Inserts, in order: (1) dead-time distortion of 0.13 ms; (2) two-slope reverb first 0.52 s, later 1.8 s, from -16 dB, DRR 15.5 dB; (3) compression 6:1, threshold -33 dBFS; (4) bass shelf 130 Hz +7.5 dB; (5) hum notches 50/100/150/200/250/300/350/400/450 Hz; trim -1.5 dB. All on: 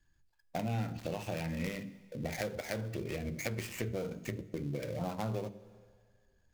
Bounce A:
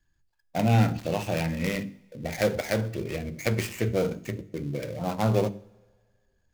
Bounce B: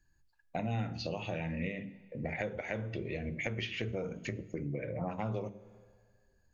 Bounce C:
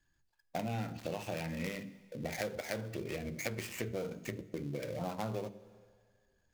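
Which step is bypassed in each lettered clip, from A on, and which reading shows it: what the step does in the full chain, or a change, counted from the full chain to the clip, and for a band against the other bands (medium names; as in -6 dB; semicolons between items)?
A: 3, mean gain reduction 7.5 dB; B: 1, distortion -12 dB; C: 4, 125 Hz band -3.5 dB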